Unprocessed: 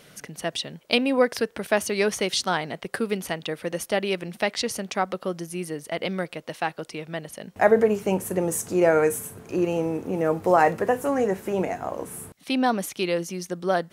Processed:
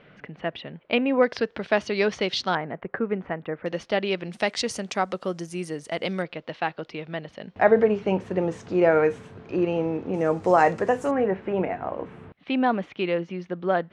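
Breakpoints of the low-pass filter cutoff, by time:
low-pass filter 24 dB per octave
2,700 Hz
from 0:01.23 4,600 Hz
from 0:02.55 1,900 Hz
from 0:03.66 4,600 Hz
from 0:04.32 8,500 Hz
from 0:06.22 4,100 Hz
from 0:10.14 7,600 Hz
from 0:11.11 3,000 Hz

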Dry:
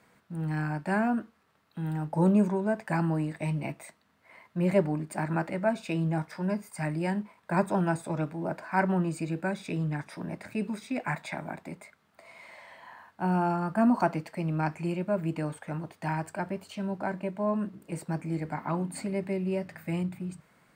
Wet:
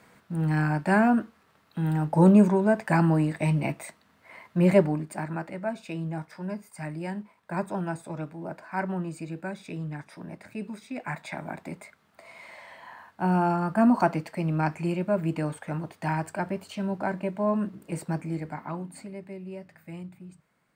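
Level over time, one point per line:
0:04.69 +6 dB
0:05.38 −4 dB
0:10.90 −4 dB
0:11.66 +3 dB
0:18.07 +3 dB
0:19.20 −9 dB

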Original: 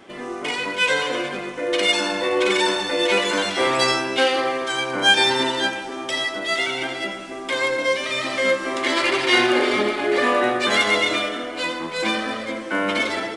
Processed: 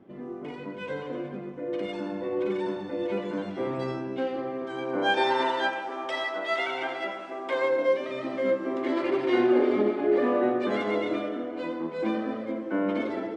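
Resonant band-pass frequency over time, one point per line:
resonant band-pass, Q 0.96
0:04.49 160 Hz
0:05.43 840 Hz
0:07.26 840 Hz
0:08.28 290 Hz

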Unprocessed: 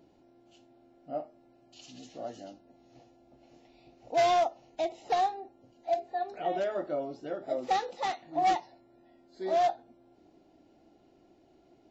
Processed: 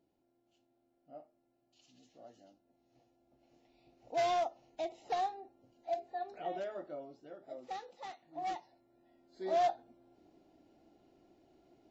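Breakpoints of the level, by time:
0:02.50 −16 dB
0:04.17 −7 dB
0:06.38 −7 dB
0:07.28 −14.5 dB
0:08.21 −14.5 dB
0:09.56 −4 dB

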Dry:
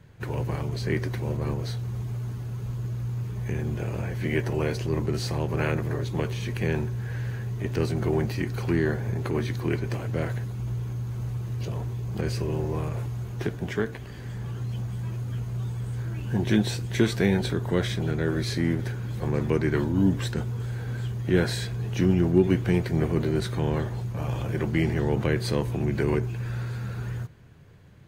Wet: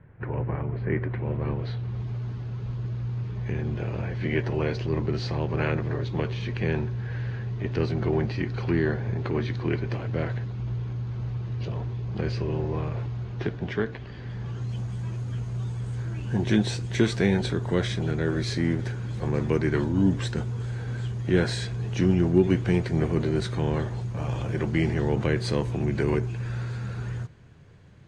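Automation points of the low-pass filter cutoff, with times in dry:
low-pass filter 24 dB per octave
0:00.91 2,100 Hz
0:02.08 4,800 Hz
0:14.30 4,800 Hz
0:14.75 8,500 Hz

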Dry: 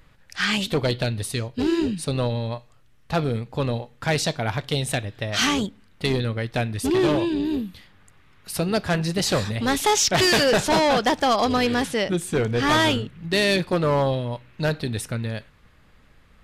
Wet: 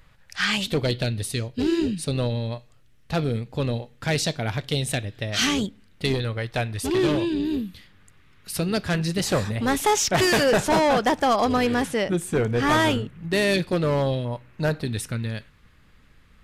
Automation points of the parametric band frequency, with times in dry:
parametric band −6 dB 1.2 octaves
310 Hz
from 0:00.68 990 Hz
from 0:06.14 230 Hz
from 0:06.95 790 Hz
from 0:09.21 4,100 Hz
from 0:13.54 980 Hz
from 0:14.25 3,500 Hz
from 0:14.85 670 Hz

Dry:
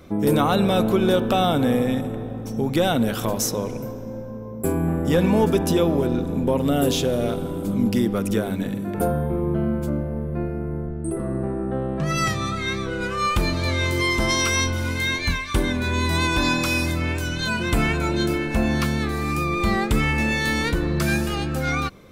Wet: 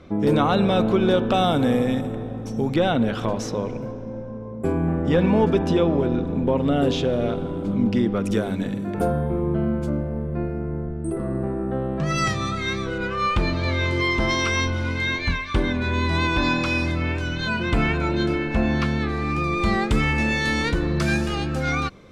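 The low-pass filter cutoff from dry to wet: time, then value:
4,600 Hz
from 0:01.34 8,100 Hz
from 0:02.74 3,500 Hz
from 0:08.24 7,200 Hz
from 0:12.98 3,800 Hz
from 0:19.44 6,900 Hz

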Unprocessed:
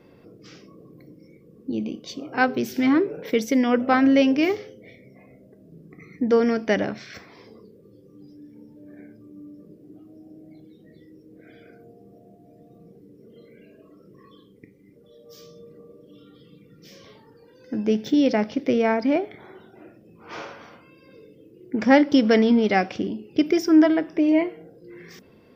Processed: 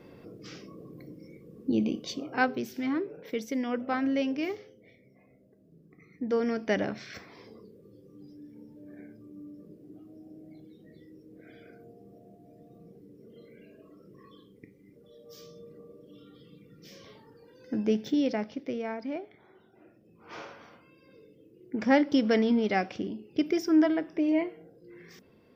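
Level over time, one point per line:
0:02.01 +1 dB
0:02.78 −11 dB
0:06.13 −11 dB
0:07.07 −3 dB
0:17.74 −3 dB
0:18.84 −14 dB
0:19.45 −14 dB
0:20.33 −7 dB

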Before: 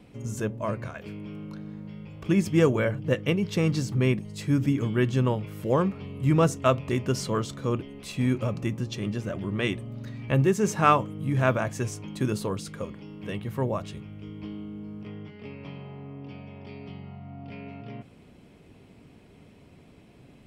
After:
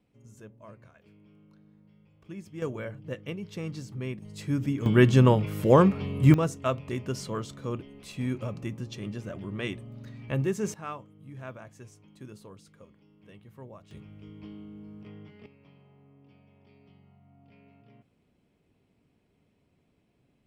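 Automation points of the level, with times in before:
−19 dB
from 0:02.62 −11.5 dB
from 0:04.22 −4.5 dB
from 0:04.86 +5.5 dB
from 0:06.34 −6 dB
from 0:10.74 −18.5 dB
from 0:13.91 −6.5 dB
from 0:15.46 −17 dB

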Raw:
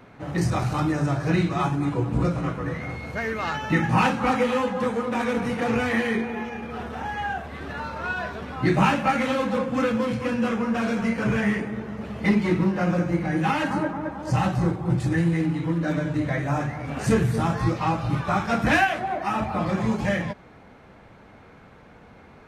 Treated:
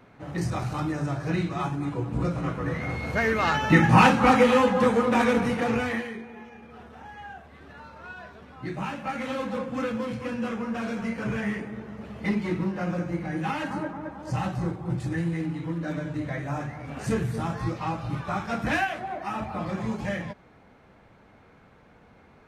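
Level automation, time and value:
0:02.12 −5 dB
0:03.15 +4 dB
0:05.21 +4 dB
0:05.91 −4 dB
0:06.14 −13 dB
0:08.86 −13 dB
0:09.37 −6 dB

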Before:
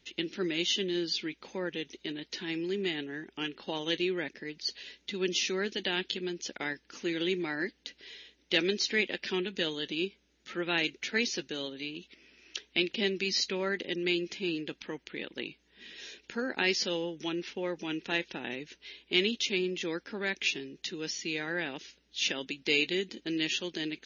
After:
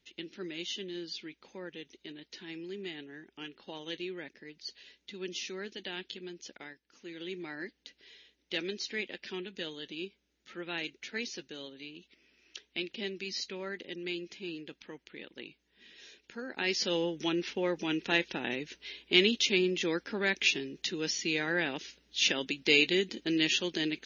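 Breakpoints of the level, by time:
0:06.55 −8.5 dB
0:06.80 −17 dB
0:07.45 −7.5 dB
0:16.46 −7.5 dB
0:17.00 +3 dB

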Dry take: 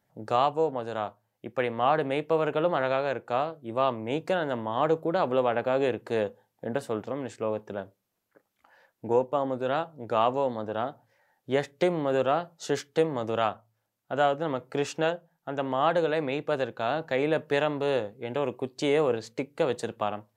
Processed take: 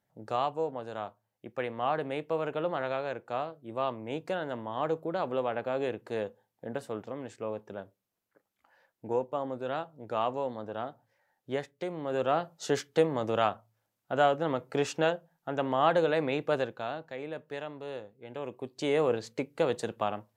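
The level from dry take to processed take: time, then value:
0:11.53 −6 dB
0:11.78 −12.5 dB
0:12.41 −0.5 dB
0:16.56 −0.5 dB
0:17.14 −13 dB
0:18.12 −13 dB
0:19.08 −1.5 dB

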